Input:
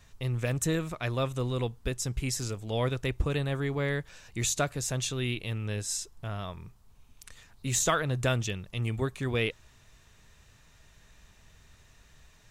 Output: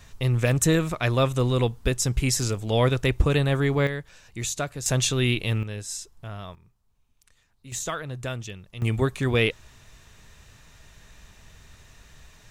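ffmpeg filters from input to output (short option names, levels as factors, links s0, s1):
-af "asetnsamples=n=441:p=0,asendcmd='3.87 volume volume -0.5dB;4.86 volume volume 8.5dB;5.63 volume volume -1dB;6.55 volume volume -11.5dB;7.72 volume volume -4.5dB;8.82 volume volume 7dB',volume=2.51"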